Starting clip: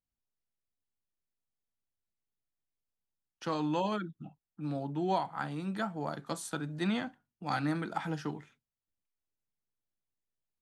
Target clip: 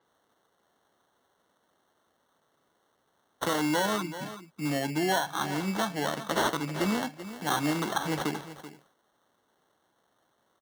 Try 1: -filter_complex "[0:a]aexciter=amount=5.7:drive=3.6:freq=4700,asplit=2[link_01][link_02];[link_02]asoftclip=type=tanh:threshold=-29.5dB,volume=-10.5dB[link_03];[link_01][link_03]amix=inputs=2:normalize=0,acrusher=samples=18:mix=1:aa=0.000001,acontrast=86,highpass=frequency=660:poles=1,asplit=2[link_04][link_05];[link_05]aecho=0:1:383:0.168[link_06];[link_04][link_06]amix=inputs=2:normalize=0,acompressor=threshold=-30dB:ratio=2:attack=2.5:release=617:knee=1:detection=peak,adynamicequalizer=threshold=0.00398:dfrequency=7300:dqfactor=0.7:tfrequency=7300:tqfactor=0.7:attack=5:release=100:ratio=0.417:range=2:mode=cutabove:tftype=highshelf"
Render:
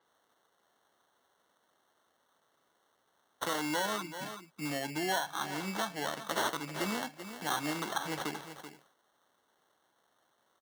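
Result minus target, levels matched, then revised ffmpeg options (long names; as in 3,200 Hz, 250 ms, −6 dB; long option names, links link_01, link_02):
downward compressor: peak gain reduction +3.5 dB; 250 Hz band −3.0 dB
-filter_complex "[0:a]aexciter=amount=5.7:drive=3.6:freq=4700,asplit=2[link_01][link_02];[link_02]asoftclip=type=tanh:threshold=-29.5dB,volume=-10.5dB[link_03];[link_01][link_03]amix=inputs=2:normalize=0,acrusher=samples=18:mix=1:aa=0.000001,acontrast=86,highpass=frequency=260:poles=1,asplit=2[link_04][link_05];[link_05]aecho=0:1:383:0.168[link_06];[link_04][link_06]amix=inputs=2:normalize=0,acompressor=threshold=-22.5dB:ratio=2:attack=2.5:release=617:knee=1:detection=peak,adynamicequalizer=threshold=0.00398:dfrequency=7300:dqfactor=0.7:tfrequency=7300:tqfactor=0.7:attack=5:release=100:ratio=0.417:range=2:mode=cutabove:tftype=highshelf"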